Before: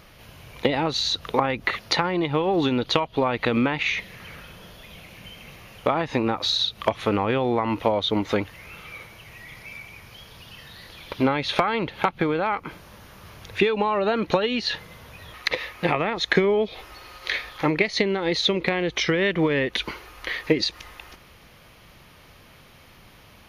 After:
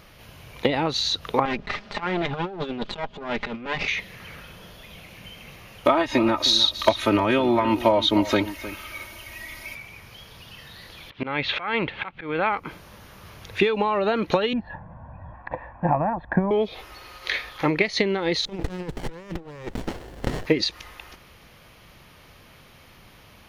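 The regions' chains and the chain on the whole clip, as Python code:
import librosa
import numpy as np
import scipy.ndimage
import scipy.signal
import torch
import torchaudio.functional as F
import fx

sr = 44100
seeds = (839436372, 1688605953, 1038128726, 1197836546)

y = fx.chain(x, sr, fx.lower_of_two(delay_ms=4.9),
    fx.over_compress(threshold_db=-27.0, ratio=-0.5),
    fx.air_absorb(metres=170.0), at=(1.45, 3.88))
y = fx.chain(y, sr, fx.high_shelf(hz=5400.0, db=7.5),
    fx.comb(ms=3.2, depth=0.98),
    fx.echo_single(ms=309, db=-14.5), at=(5.85, 9.75))
y = fx.chain(y, sr, fx.auto_swell(attack_ms=188.0),
    fx.lowpass(hz=3200.0, slope=12),
    fx.peak_eq(hz=2400.0, db=7.0, octaves=1.7), at=(11.1, 12.49))
y = fx.chain(y, sr, fx.lowpass(hz=1200.0, slope=24),
    fx.comb(ms=1.2, depth=0.97), at=(14.53, 16.51))
y = fx.chain(y, sr, fx.over_compress(threshold_db=-29.0, ratio=-0.5),
    fx.running_max(window=33), at=(18.45, 20.46))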